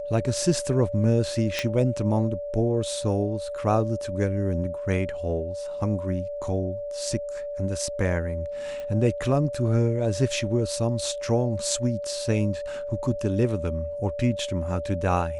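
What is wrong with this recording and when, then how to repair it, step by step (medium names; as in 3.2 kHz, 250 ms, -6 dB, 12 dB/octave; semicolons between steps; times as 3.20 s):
whine 580 Hz -30 dBFS
1.59 s: pop -10 dBFS
8.80 s: pop -24 dBFS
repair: de-click; band-stop 580 Hz, Q 30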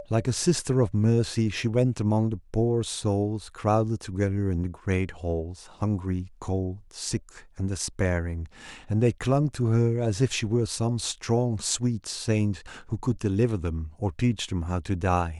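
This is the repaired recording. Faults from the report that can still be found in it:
nothing left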